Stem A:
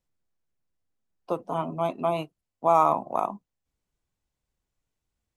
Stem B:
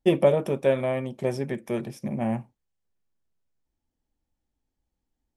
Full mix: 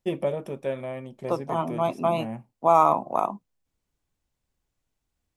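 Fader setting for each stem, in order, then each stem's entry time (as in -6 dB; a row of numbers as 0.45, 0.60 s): +2.0, -7.5 dB; 0.00, 0.00 s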